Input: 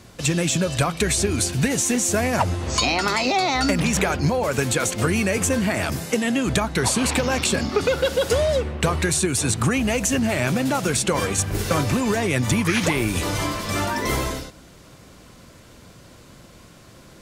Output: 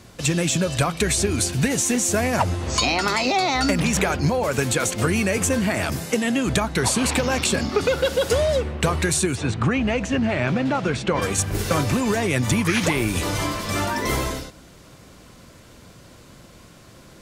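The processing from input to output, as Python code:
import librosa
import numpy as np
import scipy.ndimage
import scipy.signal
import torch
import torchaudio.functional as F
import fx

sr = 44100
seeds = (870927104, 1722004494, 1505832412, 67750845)

y = fx.lowpass(x, sr, hz=3200.0, slope=12, at=(9.34, 11.21), fade=0.02)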